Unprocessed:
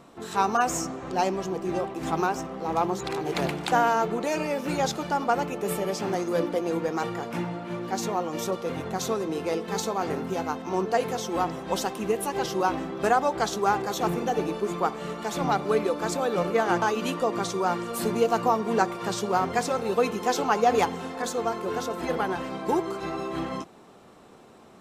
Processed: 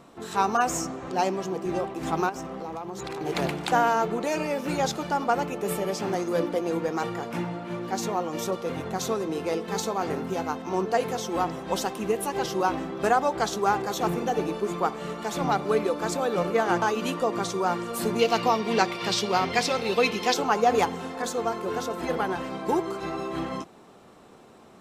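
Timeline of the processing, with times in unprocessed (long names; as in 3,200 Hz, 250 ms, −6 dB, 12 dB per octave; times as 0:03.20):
0:01.07–0:01.66: high-pass filter 110 Hz
0:02.29–0:03.21: downward compressor 12 to 1, threshold −30 dBFS
0:18.19–0:20.34: flat-topped bell 3,300 Hz +10 dB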